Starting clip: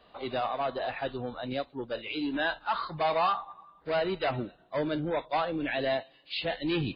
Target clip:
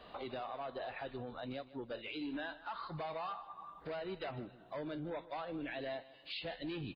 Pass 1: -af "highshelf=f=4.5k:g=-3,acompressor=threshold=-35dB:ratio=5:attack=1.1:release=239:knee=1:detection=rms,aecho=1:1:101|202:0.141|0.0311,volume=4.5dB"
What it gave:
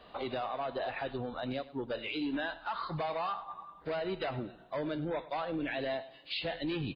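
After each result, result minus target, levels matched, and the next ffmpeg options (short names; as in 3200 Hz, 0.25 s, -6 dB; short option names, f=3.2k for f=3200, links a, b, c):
compressor: peak gain reduction -7 dB; echo 52 ms early
-af "highshelf=f=4.5k:g=-3,acompressor=threshold=-43.5dB:ratio=5:attack=1.1:release=239:knee=1:detection=rms,aecho=1:1:101|202:0.141|0.0311,volume=4.5dB"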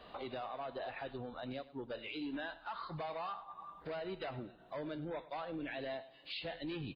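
echo 52 ms early
-af "highshelf=f=4.5k:g=-3,acompressor=threshold=-43.5dB:ratio=5:attack=1.1:release=239:knee=1:detection=rms,aecho=1:1:153|306:0.141|0.0311,volume=4.5dB"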